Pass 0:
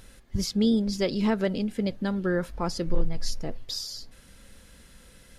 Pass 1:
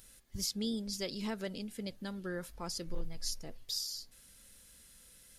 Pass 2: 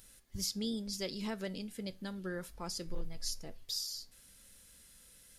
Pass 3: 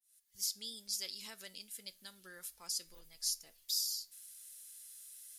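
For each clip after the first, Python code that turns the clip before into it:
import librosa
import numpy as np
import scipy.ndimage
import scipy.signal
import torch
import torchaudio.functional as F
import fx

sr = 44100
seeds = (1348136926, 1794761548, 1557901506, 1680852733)

y1 = scipy.signal.lfilter([1.0, -0.8], [1.0], x)
y2 = fx.comb_fb(y1, sr, f0_hz=94.0, decay_s=0.29, harmonics='all', damping=0.0, mix_pct=40)
y2 = F.gain(torch.from_numpy(y2), 2.5).numpy()
y3 = fx.fade_in_head(y2, sr, length_s=0.71)
y3 = scipy.signal.lfilter([1.0, -0.97], [1.0], y3)
y3 = F.gain(torch.from_numpy(y3), 5.5).numpy()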